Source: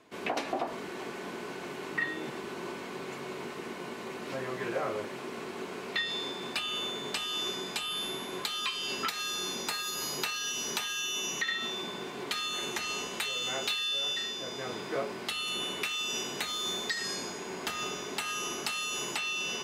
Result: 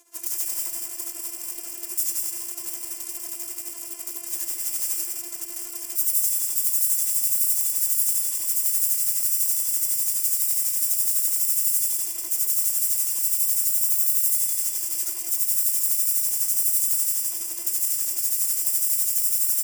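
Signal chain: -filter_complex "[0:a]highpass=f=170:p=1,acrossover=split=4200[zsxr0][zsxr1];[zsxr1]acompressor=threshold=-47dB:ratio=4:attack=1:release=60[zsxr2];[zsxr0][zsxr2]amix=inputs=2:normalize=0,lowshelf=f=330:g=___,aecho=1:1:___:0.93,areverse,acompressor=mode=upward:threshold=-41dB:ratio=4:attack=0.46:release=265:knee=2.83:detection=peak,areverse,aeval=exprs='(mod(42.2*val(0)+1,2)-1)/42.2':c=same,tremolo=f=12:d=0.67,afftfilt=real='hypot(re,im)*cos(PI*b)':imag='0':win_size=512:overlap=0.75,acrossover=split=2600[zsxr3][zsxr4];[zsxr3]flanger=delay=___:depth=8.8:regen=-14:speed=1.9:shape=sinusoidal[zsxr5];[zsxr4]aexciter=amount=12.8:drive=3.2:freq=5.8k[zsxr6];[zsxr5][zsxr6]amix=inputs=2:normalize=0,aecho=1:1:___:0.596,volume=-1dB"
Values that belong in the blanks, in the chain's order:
-7.5, 7.1, 2.5, 197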